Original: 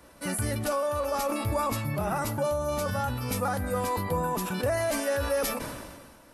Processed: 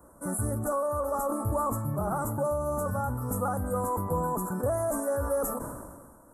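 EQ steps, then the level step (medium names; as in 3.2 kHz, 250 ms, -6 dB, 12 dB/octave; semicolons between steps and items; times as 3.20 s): Chebyshev band-stop 1.3–7.7 kHz, order 3; 0.0 dB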